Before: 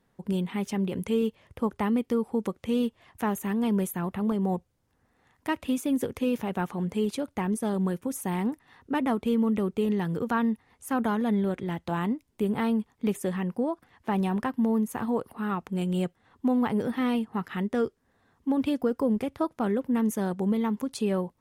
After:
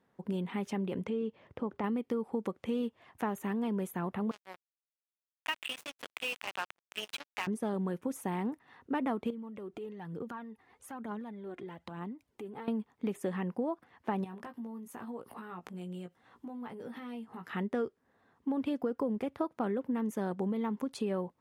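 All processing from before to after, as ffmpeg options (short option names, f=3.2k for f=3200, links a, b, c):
-filter_complex "[0:a]asettb=1/sr,asplit=3[a][b][c];[a]atrim=end=1.014[d];[b]atrim=start=1.01:end=1.84,asetpts=PTS-STARTPTS,afade=t=in:d=0.004:c=qsin,afade=t=out:st=0.826:d=0.004:c=qsin,lowpass=5.6k,equalizer=f=280:w=0.46:g=4.5,acompressor=threshold=-33dB:ratio=2:attack=3.2:release=140:knee=1:detection=peak[e];[c]atrim=start=1.836[f];[d][e]acrossfade=d=0.004:c1=hsin:c2=qsin[g];[g][f]acrossfade=d=0.004:c1=qsin:c2=hsin,asettb=1/sr,asplit=3[h][i][j];[h]atrim=end=4.314[k];[i]atrim=start=4.31:end=7.47,asetpts=PTS-STARTPTS,afade=t=in:d=0.004:c=qsin,afade=t=out:st=3.156:d=0.004:c=qsin,highpass=1k,equalizer=f=2.8k:t=o:w=0.74:g=14.5,acrusher=bits=4:mix=0:aa=0.5[l];[j]atrim=start=7.466[m];[k][l]acrossfade=d=0.004:c1=hsin:c2=qsin[n];[n][m]acrossfade=d=0.004:c1=qsin:c2=hsin,asettb=1/sr,asplit=3[o][p][q];[o]atrim=end=9.304[r];[p]atrim=start=9.3:end=12.68,asetpts=PTS-STARTPTS,afade=t=in:d=0.004:c=qsin,afade=t=out:st=3.376:d=0.004:c=qsin,acompressor=threshold=-38dB:ratio=8:attack=3.2:release=140:knee=1:detection=peak,aphaser=in_gain=1:out_gain=1:delay=3:decay=0.48:speed=1.1:type=triangular[s];[q]atrim=start=12.676[t];[r][s]acrossfade=d=0.004:c1=hsin:c2=qsin[u];[u][t]acrossfade=d=0.004:c1=qsin:c2=hsin,asettb=1/sr,asplit=3[v][w][x];[v]atrim=end=14.244[y];[w]atrim=start=14.24:end=17.53,asetpts=PTS-STARTPTS,afade=t=in:d=0.004:c=qsin,afade=t=out:st=3.286:d=0.004:c=qsin,highshelf=f=3.7k:g=7.5,acompressor=threshold=-39dB:ratio=8:attack=3.2:release=140:knee=1:detection=peak,asplit=2[z][aa];[aa]adelay=17,volume=-5.5dB[ab];[z][ab]amix=inputs=2:normalize=0,atrim=end_sample=145089[ac];[x]atrim=start=17.526[ad];[y][ac]acrossfade=d=0.004:c1=hsin:c2=qsin[ae];[ae][ad]acrossfade=d=0.004:c1=qsin:c2=hsin,acompressor=threshold=-27dB:ratio=6,highpass=f=230:p=1,highshelf=f=3.6k:g=-11"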